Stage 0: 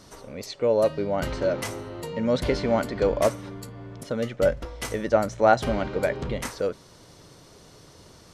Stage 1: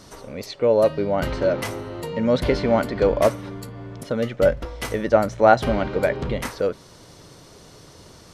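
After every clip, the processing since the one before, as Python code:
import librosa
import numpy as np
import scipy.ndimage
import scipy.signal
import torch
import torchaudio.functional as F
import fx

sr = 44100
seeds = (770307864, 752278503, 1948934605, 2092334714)

y = fx.dynamic_eq(x, sr, hz=7300.0, q=1.1, threshold_db=-52.0, ratio=4.0, max_db=-6)
y = y * librosa.db_to_amplitude(4.0)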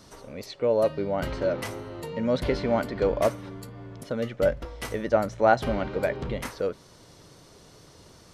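y = fx.wow_flutter(x, sr, seeds[0], rate_hz=2.1, depth_cents=24.0)
y = y * librosa.db_to_amplitude(-5.5)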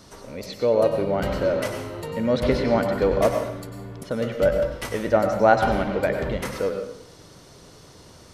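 y = fx.rev_plate(x, sr, seeds[1], rt60_s=0.7, hf_ratio=0.8, predelay_ms=85, drr_db=4.5)
y = y * librosa.db_to_amplitude(3.0)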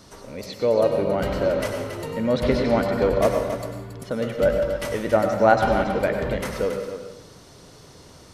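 y = x + 10.0 ** (-9.0 / 20.0) * np.pad(x, (int(276 * sr / 1000.0), 0))[:len(x)]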